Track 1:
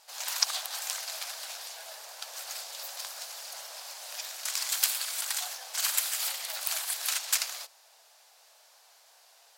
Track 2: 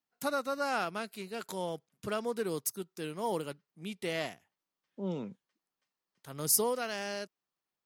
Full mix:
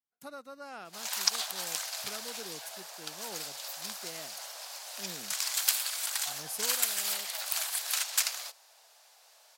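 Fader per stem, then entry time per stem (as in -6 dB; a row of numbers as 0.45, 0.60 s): -0.5, -12.5 dB; 0.85, 0.00 s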